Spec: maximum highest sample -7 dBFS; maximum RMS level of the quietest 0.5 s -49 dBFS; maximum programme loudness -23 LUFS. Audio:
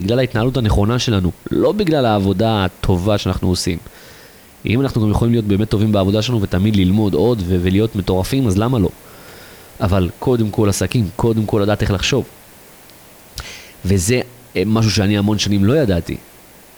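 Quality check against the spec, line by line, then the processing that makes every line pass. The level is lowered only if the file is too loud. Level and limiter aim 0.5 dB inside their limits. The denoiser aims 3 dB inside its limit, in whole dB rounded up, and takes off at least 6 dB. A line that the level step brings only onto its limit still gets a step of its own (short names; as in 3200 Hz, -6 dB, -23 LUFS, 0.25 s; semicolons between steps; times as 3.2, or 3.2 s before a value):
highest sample -5.0 dBFS: fail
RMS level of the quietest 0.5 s -43 dBFS: fail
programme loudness -16.5 LUFS: fail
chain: gain -7 dB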